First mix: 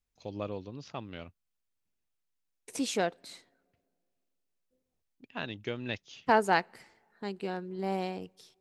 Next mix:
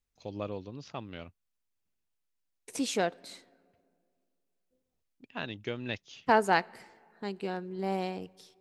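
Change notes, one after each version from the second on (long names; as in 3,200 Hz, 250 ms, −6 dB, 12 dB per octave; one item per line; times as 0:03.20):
second voice: send +8.5 dB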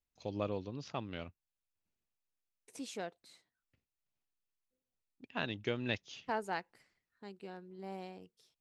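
second voice −12.0 dB
reverb: off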